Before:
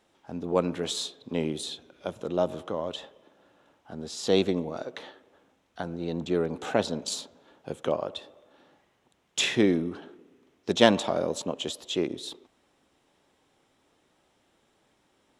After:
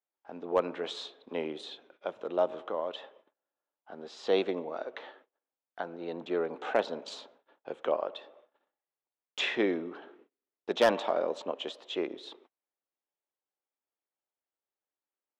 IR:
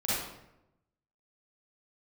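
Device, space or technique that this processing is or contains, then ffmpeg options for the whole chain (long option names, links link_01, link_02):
walkie-talkie: -af "highpass=440,lowpass=2600,asoftclip=type=hard:threshold=-15.5dB,agate=range=-29dB:threshold=-58dB:ratio=16:detection=peak"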